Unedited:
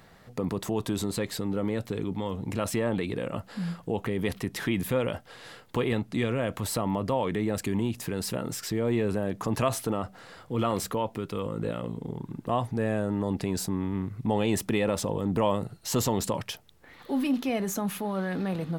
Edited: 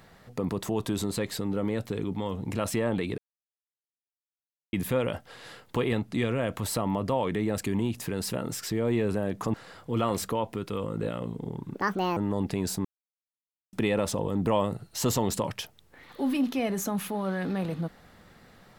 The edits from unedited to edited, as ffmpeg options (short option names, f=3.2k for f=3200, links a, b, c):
-filter_complex "[0:a]asplit=8[a][b][c][d][e][f][g][h];[a]atrim=end=3.18,asetpts=PTS-STARTPTS,afade=t=out:st=3.176:d=0.004:c=hsin[i];[b]atrim=start=3.18:end=4.73,asetpts=PTS-STARTPTS,volume=0[j];[c]atrim=start=4.73:end=9.542,asetpts=PTS-STARTPTS,afade=t=in:d=0.004:c=hsin[k];[d]atrim=start=10.158:end=12.364[l];[e]atrim=start=12.36:end=13.07,asetpts=PTS-STARTPTS,asetrate=73206,aresample=44100,atrim=end_sample=18862,asetpts=PTS-STARTPTS[m];[f]atrim=start=13.066:end=13.75,asetpts=PTS-STARTPTS,afade=t=out:st=0.68:d=0.004:c=hsin[n];[g]atrim=start=13.75:end=14.63,asetpts=PTS-STARTPTS,volume=0[o];[h]atrim=start=14.63,asetpts=PTS-STARTPTS,afade=t=in:d=0.004:c=hsin[p];[i][j][k]concat=n=3:v=0:a=1[q];[q][l]acrossfade=d=0.004:c1=hsin:c2=hsin[r];[r][m]acrossfade=d=0.004:c1=hsin:c2=hsin[s];[n][o][p]concat=n=3:v=0:a=1[t];[s][t]acrossfade=d=0.004:c1=hsin:c2=hsin"